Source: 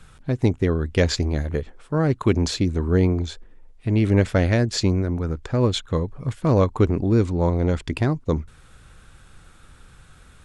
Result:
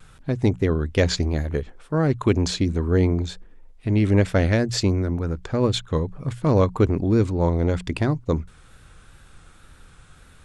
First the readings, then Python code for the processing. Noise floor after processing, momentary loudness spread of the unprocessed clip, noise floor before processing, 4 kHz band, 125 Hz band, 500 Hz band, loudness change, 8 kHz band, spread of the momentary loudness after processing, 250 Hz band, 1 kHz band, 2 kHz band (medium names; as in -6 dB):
-50 dBFS, 8 LU, -50 dBFS, 0.0 dB, -0.5 dB, 0.0 dB, -0.5 dB, 0.0 dB, 8 LU, -0.5 dB, 0.0 dB, 0.0 dB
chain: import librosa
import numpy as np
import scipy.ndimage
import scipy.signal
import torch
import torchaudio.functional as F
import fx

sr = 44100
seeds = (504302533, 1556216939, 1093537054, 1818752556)

y = fx.wow_flutter(x, sr, seeds[0], rate_hz=2.1, depth_cents=48.0)
y = fx.hum_notches(y, sr, base_hz=60, count=3)